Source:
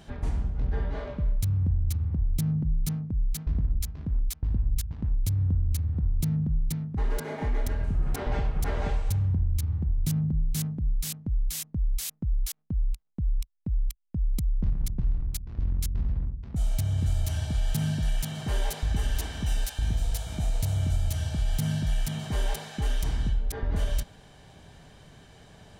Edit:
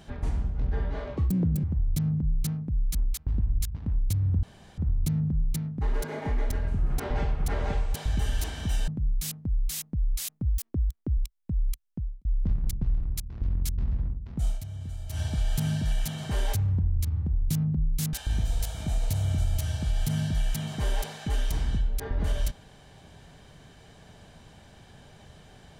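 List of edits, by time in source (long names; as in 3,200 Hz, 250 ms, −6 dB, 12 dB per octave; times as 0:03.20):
0:01.17–0:02.06: play speed 190%
0:03.37–0:04.11: remove
0:05.59–0:05.94: fill with room tone
0:09.11–0:10.69: swap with 0:18.72–0:19.65
0:12.25–0:13.34: play speed 149%
0:14.04–0:14.42: fade out and dull
0:16.65–0:17.37: duck −10.5 dB, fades 0.12 s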